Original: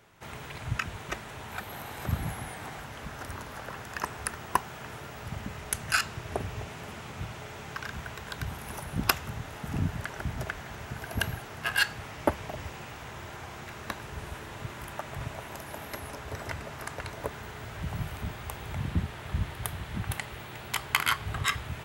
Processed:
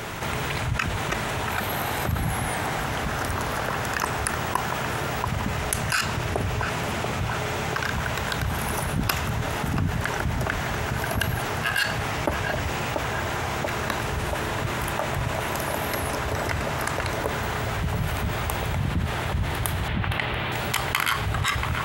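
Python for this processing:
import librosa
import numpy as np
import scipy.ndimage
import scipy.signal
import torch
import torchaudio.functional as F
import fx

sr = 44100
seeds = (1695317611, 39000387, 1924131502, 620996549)

y = fx.high_shelf_res(x, sr, hz=4700.0, db=-13.5, q=1.5, at=(19.88, 20.52))
y = fx.echo_banded(y, sr, ms=685, feedback_pct=76, hz=660.0, wet_db=-10.0)
y = fx.env_flatten(y, sr, amount_pct=70)
y = F.gain(torch.from_numpy(y), -1.0).numpy()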